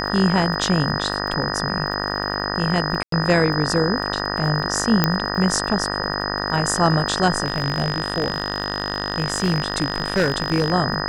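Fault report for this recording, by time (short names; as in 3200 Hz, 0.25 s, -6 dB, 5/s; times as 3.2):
buzz 50 Hz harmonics 38 -26 dBFS
crackle 33/s -30 dBFS
tone 5000 Hz -28 dBFS
3.03–3.12 gap 93 ms
5.04 pop -2 dBFS
7.44–10.73 clipped -13.5 dBFS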